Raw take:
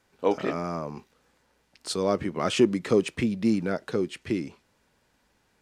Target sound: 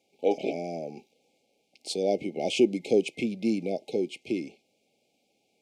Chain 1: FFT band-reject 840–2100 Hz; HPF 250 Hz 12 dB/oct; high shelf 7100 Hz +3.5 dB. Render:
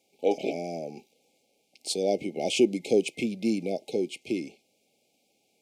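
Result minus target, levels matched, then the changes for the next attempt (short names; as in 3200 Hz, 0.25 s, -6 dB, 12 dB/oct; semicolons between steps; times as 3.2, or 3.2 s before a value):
8000 Hz band +5.0 dB
change: high shelf 7100 Hz -6.5 dB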